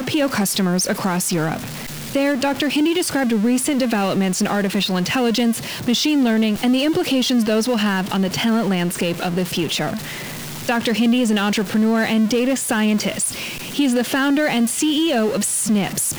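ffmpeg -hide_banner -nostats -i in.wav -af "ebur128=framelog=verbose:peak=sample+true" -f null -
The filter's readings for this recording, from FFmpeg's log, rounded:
Integrated loudness:
  I:         -18.9 LUFS
  Threshold: -29.0 LUFS
Loudness range:
  LRA:         2.2 LU
  Threshold: -39.0 LUFS
  LRA low:   -20.3 LUFS
  LRA high:  -18.1 LUFS
Sample peak:
  Peak:       -7.0 dBFS
True peak:
  Peak:       -7.0 dBFS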